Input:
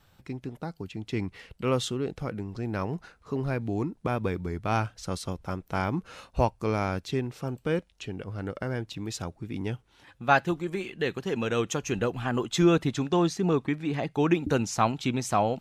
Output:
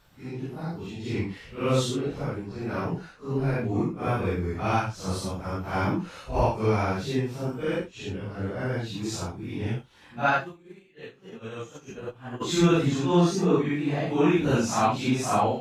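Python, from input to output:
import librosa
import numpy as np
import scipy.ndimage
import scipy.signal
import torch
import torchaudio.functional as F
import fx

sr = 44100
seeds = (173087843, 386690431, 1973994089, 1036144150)

y = fx.phase_scramble(x, sr, seeds[0], window_ms=200)
y = fx.upward_expand(y, sr, threshold_db=-35.0, expansion=2.5, at=(10.29, 12.4), fade=0.02)
y = y * 10.0 ** (2.5 / 20.0)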